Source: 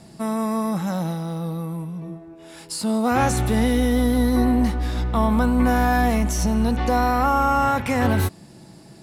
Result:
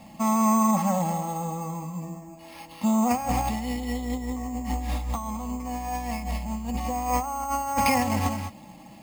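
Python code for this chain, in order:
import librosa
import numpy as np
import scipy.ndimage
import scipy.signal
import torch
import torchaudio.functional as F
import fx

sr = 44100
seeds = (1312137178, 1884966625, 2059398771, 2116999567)

y = fx.fixed_phaser(x, sr, hz=1500.0, stages=6)
y = y + 0.54 * np.pad(y, (int(3.7 * sr / 1000.0), 0))[:len(y)]
y = y + 10.0 ** (-10.5 / 20.0) * np.pad(y, (int(209 * sr / 1000.0), 0))[:len(y)]
y = fx.over_compress(y, sr, threshold_db=-23.0, ratio=-0.5)
y = fx.air_absorb(y, sr, metres=170.0, at=(0.82, 3.44))
y = np.repeat(scipy.signal.resample_poly(y, 1, 6), 6)[:len(y)]
y = fx.low_shelf(y, sr, hz=160.0, db=-9.0)
y = F.gain(torch.from_numpy(y), 1.5).numpy()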